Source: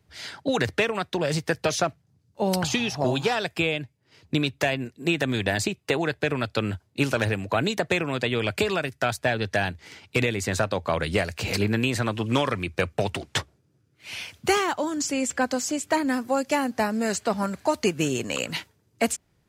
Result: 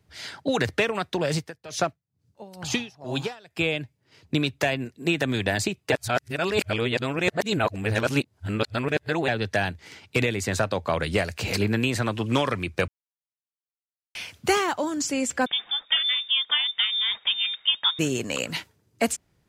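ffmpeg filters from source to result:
-filter_complex "[0:a]asettb=1/sr,asplit=3[a][b][c];[a]atrim=end=1.374[d];[b]atrim=start=1.37:end=3.61,asetpts=PTS-STARTPTS,afade=t=in:d=0.004:c=qsin,afade=t=out:st=2.236:d=0.004:c=qsin,aeval=exprs='val(0)*pow(10,-23*(0.5-0.5*cos(2*PI*2.2*n/s))/20)':c=same[e];[c]atrim=start=3.606[f];[d][e]acrossfade=d=0.004:c1=hsin:c2=qsin[g];[g][f]acrossfade=d=0.004:c1=qsin:c2=hsin,asettb=1/sr,asplit=3[h][i][j];[h]atrim=end=15.464[k];[i]atrim=start=15.46:end=17.99,asetpts=PTS-STARTPTS,afade=t=in:d=0.004:c=qsin,afade=t=out:st=2.526:d=0.004:c=qsin,lowpass=f=3.2k:t=q:w=0.5098,lowpass=f=3.2k:t=q:w=0.6013,lowpass=f=3.2k:t=q:w=0.9,lowpass=f=3.2k:t=q:w=2.563,afreqshift=-3800[l];[j]atrim=start=17.986[m];[k][l]acrossfade=d=0.004:c1=hsin:c2=qsin[n];[n][m]acrossfade=d=0.004:c1=qsin:c2=hsin,asplit=5[o][p][q][r][s];[o]atrim=end=5.922[t];[p]atrim=start=5.918:end=9.282,asetpts=PTS-STARTPTS,areverse[u];[q]atrim=start=9.278:end=12.88,asetpts=PTS-STARTPTS,afade=t=out:st=3.598:d=0.004:c=hsin[v];[r]atrim=start=12.88:end=14.15,asetpts=PTS-STARTPTS,volume=0[w];[s]atrim=start=14.15,asetpts=PTS-STARTPTS,afade=t=in:d=0.004:c=hsin[x];[t][u]acrossfade=d=0.004:c1=hsin:c2=hsin[y];[v][w][x]concat=n=3:v=0:a=1[z];[y][z]acrossfade=d=0.004:c1=hsin:c2=hsin"

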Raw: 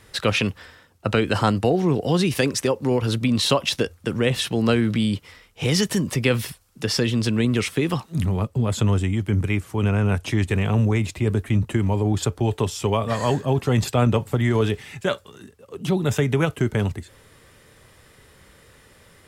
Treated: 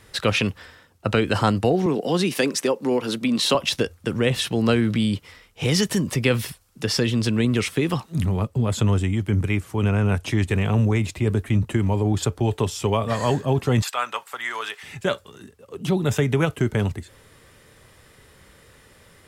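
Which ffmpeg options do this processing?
-filter_complex "[0:a]asettb=1/sr,asplit=3[a][b][c];[a]atrim=end=1.864[d];[b]atrim=start=1.86:end=3.55,asetpts=PTS-STARTPTS,afade=t=in:d=0.004:c=qsin,afade=t=out:st=1.686:d=0.004:c=qsin,highpass=f=180:w=0.5412,highpass=f=180:w=1.3066[e];[c]atrim=start=3.546[f];[d][e]acrossfade=d=0.004:c1=hsin:c2=qsin[g];[g][f]acrossfade=d=0.004:c1=qsin:c2=hsin,asettb=1/sr,asplit=3[h][i][j];[h]atrim=end=13.824[k];[i]atrim=start=13.82:end=14.83,asetpts=PTS-STARTPTS,afade=t=in:d=0.004:c=qsin,afade=t=out:st=1.006:d=0.004:c=qsin,highpass=f=1.2k:t=q:w=1.5[l];[j]atrim=start=14.826[m];[k][l]acrossfade=d=0.004:c1=hsin:c2=qsin[n];[n][m]acrossfade=d=0.004:c1=qsin:c2=hsin"

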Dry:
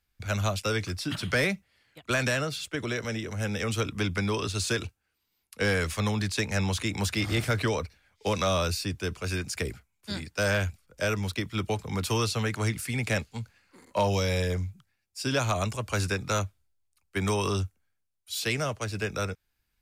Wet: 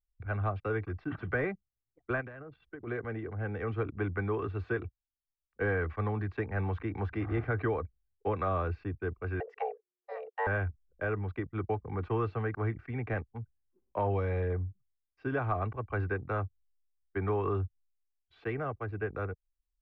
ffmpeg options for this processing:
-filter_complex "[0:a]asplit=3[a][b][c];[a]afade=t=out:st=2.2:d=0.02[d];[b]acompressor=threshold=-37dB:ratio=4:attack=3.2:release=140:knee=1:detection=peak,afade=t=in:st=2.2:d=0.02,afade=t=out:st=2.86:d=0.02[e];[c]afade=t=in:st=2.86:d=0.02[f];[d][e][f]amix=inputs=3:normalize=0,asettb=1/sr,asplit=3[g][h][i];[g]atrim=end=9.404[j];[h]atrim=start=9.4:end=10.47,asetpts=PTS-STARTPTS,afade=t=in:d=0.004:c=qsin,afade=t=out:st=1.066:d=0.004:c=qsin,afreqshift=360[k];[i]atrim=start=10.466[l];[j][k]acrossfade=d=0.004:c1=hsin:c2=qsin[m];[m][l]acrossfade=d=0.004:c1=qsin:c2=hsin,aecho=1:1:2.6:0.46,anlmdn=1,lowpass=f=1.7k:w=0.5412,lowpass=f=1.7k:w=1.3066,volume=-4dB"

